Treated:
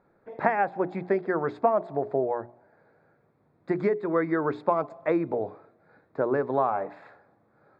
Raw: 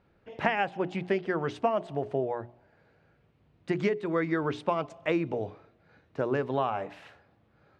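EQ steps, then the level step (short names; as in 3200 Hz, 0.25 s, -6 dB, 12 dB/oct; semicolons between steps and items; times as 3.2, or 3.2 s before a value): running mean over 15 samples; bell 60 Hz -15 dB 0.93 oct; low shelf 270 Hz -8.5 dB; +6.5 dB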